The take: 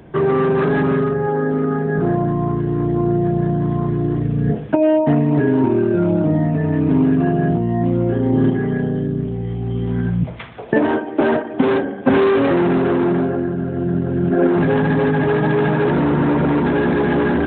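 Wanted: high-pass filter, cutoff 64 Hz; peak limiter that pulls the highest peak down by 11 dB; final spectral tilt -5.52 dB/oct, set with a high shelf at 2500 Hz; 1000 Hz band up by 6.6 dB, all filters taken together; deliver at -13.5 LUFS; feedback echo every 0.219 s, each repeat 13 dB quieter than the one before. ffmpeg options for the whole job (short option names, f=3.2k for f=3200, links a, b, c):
-af "highpass=64,equalizer=f=1k:t=o:g=9,highshelf=f=2.5k:g=-4,alimiter=limit=-10.5dB:level=0:latency=1,aecho=1:1:219|438|657:0.224|0.0493|0.0108,volume=5.5dB"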